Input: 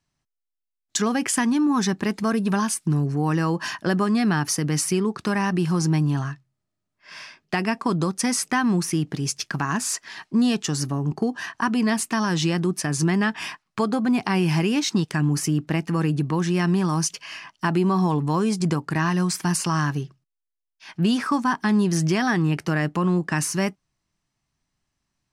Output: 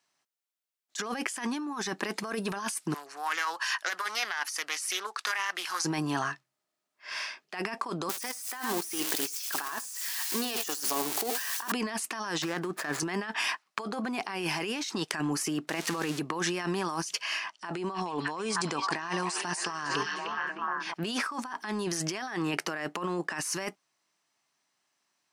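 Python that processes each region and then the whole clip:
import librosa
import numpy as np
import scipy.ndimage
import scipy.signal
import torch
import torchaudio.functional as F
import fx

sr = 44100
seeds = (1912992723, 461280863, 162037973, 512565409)

y = fx.chain(x, sr, fx.highpass(hz=1200.0, slope=12),
    fx.doppler_dist(depth_ms=0.18), at=(2.94, 5.85))
y = fx.chain(y, sr, fx.crossing_spikes(level_db=-19.0),
    fx.highpass(hz=310.0, slope=12),
    fx.echo_single(ms=78, db=-11.5), at=(8.09, 11.72))
y = fx.chain(y, sr, fx.median_filter(points=15),
    fx.peak_eq(hz=1700.0, db=5.5, octaves=0.85), at=(12.42, 13.0))
y = fx.chain(y, sr, fx.crossing_spikes(level_db=-20.5),
    fx.air_absorb(metres=54.0), at=(15.69, 16.2))
y = fx.chain(y, sr, fx.brickwall_lowpass(high_hz=10000.0),
    fx.echo_stepped(ms=307, hz=3400.0, octaves=-0.7, feedback_pct=70, wet_db=-3.5), at=(17.5, 20.94))
y = scipy.signal.sosfilt(scipy.signal.butter(2, 470.0, 'highpass', fs=sr, output='sos'), y)
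y = fx.over_compress(y, sr, threshold_db=-33.0, ratio=-1.0)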